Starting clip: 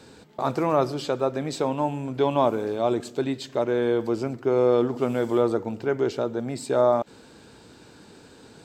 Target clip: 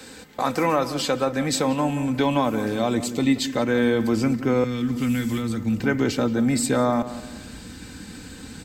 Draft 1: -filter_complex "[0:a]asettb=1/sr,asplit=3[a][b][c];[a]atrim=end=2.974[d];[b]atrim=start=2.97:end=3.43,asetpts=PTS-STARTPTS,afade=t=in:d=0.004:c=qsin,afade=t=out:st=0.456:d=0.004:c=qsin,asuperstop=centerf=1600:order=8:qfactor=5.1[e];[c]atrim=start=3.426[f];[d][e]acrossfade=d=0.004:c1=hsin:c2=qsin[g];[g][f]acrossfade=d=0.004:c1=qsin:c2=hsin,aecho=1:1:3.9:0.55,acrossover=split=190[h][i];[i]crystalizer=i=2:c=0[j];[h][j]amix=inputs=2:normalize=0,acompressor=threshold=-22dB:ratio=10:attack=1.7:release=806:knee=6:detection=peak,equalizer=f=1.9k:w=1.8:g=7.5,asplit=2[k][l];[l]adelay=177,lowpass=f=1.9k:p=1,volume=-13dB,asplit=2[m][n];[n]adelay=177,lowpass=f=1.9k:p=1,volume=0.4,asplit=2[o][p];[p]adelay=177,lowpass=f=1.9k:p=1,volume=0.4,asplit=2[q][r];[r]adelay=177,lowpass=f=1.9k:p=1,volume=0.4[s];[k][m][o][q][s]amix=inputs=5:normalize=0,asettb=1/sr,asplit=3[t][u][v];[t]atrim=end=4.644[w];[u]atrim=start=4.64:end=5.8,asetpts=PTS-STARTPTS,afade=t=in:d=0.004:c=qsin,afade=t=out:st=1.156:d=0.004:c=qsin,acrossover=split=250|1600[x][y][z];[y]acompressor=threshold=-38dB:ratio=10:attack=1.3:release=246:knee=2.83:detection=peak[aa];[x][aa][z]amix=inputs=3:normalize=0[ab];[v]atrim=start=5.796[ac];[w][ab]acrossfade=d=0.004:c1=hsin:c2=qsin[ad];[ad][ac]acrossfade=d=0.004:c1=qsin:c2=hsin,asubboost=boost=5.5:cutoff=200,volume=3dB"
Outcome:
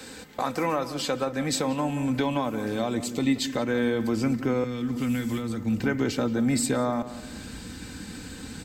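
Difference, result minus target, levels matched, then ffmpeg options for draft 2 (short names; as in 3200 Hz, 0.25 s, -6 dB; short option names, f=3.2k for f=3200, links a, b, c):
compressor: peak gain reduction +6.5 dB
-filter_complex "[0:a]asettb=1/sr,asplit=3[a][b][c];[a]atrim=end=2.974[d];[b]atrim=start=2.97:end=3.43,asetpts=PTS-STARTPTS,afade=t=in:d=0.004:c=qsin,afade=t=out:st=0.456:d=0.004:c=qsin,asuperstop=centerf=1600:order=8:qfactor=5.1[e];[c]atrim=start=3.426[f];[d][e]acrossfade=d=0.004:c1=hsin:c2=qsin[g];[g][f]acrossfade=d=0.004:c1=qsin:c2=hsin,aecho=1:1:3.9:0.55,acrossover=split=190[h][i];[i]crystalizer=i=2:c=0[j];[h][j]amix=inputs=2:normalize=0,acompressor=threshold=-15dB:ratio=10:attack=1.7:release=806:knee=6:detection=peak,equalizer=f=1.9k:w=1.8:g=7.5,asplit=2[k][l];[l]adelay=177,lowpass=f=1.9k:p=1,volume=-13dB,asplit=2[m][n];[n]adelay=177,lowpass=f=1.9k:p=1,volume=0.4,asplit=2[o][p];[p]adelay=177,lowpass=f=1.9k:p=1,volume=0.4,asplit=2[q][r];[r]adelay=177,lowpass=f=1.9k:p=1,volume=0.4[s];[k][m][o][q][s]amix=inputs=5:normalize=0,asettb=1/sr,asplit=3[t][u][v];[t]atrim=end=4.644[w];[u]atrim=start=4.64:end=5.8,asetpts=PTS-STARTPTS,afade=t=in:d=0.004:c=qsin,afade=t=out:st=1.156:d=0.004:c=qsin,acrossover=split=250|1600[x][y][z];[y]acompressor=threshold=-38dB:ratio=10:attack=1.3:release=246:knee=2.83:detection=peak[aa];[x][aa][z]amix=inputs=3:normalize=0[ab];[v]atrim=start=5.796[ac];[w][ab]acrossfade=d=0.004:c1=hsin:c2=qsin[ad];[ad][ac]acrossfade=d=0.004:c1=qsin:c2=hsin,asubboost=boost=5.5:cutoff=200,volume=3dB"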